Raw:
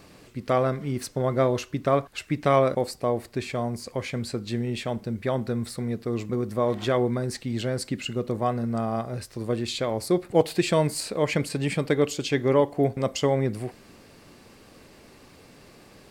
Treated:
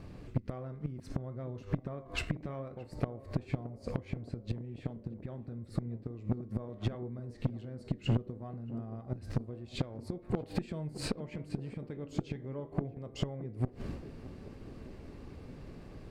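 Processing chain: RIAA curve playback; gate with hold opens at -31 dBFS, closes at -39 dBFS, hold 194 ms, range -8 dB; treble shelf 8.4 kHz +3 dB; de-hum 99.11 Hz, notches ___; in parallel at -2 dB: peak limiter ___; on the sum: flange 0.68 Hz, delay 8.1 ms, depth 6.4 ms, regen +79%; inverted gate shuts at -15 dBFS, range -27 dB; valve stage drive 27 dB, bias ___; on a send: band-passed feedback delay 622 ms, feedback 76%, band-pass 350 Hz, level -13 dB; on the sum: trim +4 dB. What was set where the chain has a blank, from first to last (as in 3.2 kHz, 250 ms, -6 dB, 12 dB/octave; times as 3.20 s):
23, -11.5 dBFS, 0.35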